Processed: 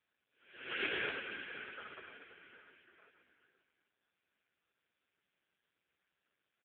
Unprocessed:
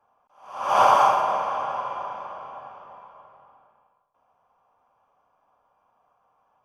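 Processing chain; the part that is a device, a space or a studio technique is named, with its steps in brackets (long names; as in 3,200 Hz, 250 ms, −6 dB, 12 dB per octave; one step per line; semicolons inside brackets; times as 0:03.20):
0:02.21–0:02.65: low shelf with overshoot 150 Hz +11 dB, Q 1.5
gate on every frequency bin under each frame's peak −20 dB weak
satellite phone (band-pass filter 350–3,200 Hz; single-tap delay 522 ms −19.5 dB; level +4 dB; AMR narrowband 4.75 kbit/s 8,000 Hz)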